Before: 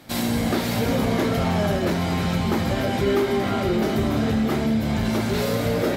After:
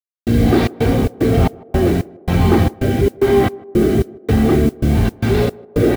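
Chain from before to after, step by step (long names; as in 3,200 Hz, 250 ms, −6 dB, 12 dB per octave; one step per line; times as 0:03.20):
low-pass filter 3,800 Hz 12 dB per octave
low-shelf EQ 390 Hz +9 dB
comb filter 2.6 ms, depth 48%
in parallel at +3 dB: brickwall limiter −14.5 dBFS, peak gain reduction 9.5 dB
on the sum: rotating-speaker cabinet horn 1.1 Hz
gate pattern "..xxx.xx.xx..xx" 112 BPM −60 dB
bit reduction 6 bits
noise that follows the level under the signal 30 dB
on a send: feedback echo with a band-pass in the loop 155 ms, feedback 59%, band-pass 510 Hz, level −20.5 dB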